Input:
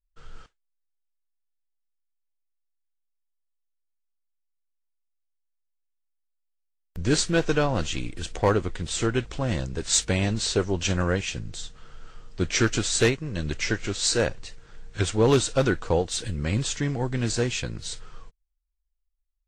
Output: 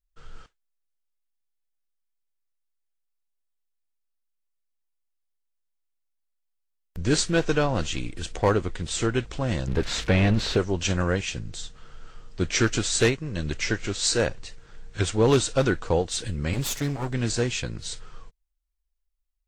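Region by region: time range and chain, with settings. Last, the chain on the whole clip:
9.67–10.57 switching spikes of -28.5 dBFS + sample leveller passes 2 + LPF 2700 Hz
16.53–17.13 minimum comb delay 7.2 ms + high shelf 7100 Hz +4.5 dB
whole clip: dry

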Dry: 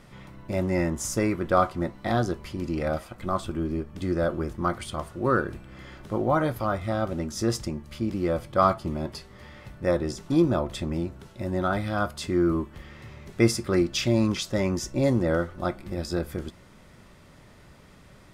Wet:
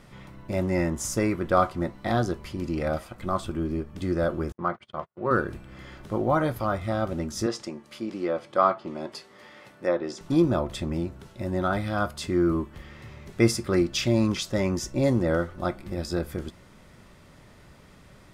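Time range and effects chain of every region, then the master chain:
4.52–5.31 gate -36 dBFS, range -41 dB + BPF 170–2500 Hz + bell 280 Hz -10.5 dB 0.46 oct
7.46–10.21 HPF 290 Hz + treble ducked by the level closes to 3000 Hz, closed at -21.5 dBFS
whole clip: dry

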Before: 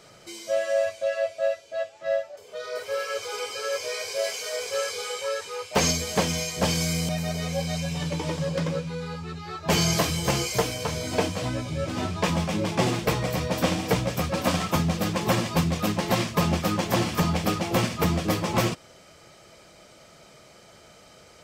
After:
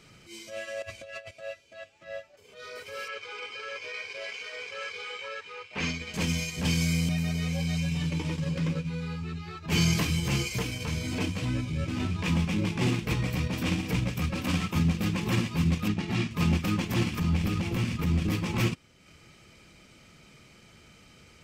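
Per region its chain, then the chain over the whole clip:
0.82–1.31 low shelf 130 Hz +7.5 dB + negative-ratio compressor -31 dBFS
3.08–6.14 LPF 2400 Hz + tilt +2.5 dB/oct
15.88–16.31 air absorption 51 m + notch comb 520 Hz
17.19–18.32 compressor 5:1, threshold -24 dBFS + low shelf 140 Hz +6.5 dB
whole clip: fifteen-band EQ 250 Hz +4 dB, 630 Hz -9 dB, 2500 Hz +8 dB; transient shaper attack -10 dB, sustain -6 dB; low shelf 210 Hz +10.5 dB; gain -5.5 dB

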